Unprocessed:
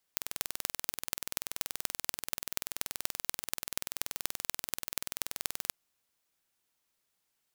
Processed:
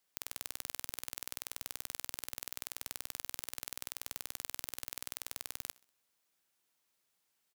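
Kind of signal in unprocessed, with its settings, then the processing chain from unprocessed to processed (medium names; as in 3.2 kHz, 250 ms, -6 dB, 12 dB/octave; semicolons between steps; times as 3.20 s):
pulse train 20.8 per s, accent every 5, -2 dBFS 5.57 s
bass shelf 77 Hz -10 dB; peak limiter -11 dBFS; feedback delay 64 ms, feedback 48%, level -24 dB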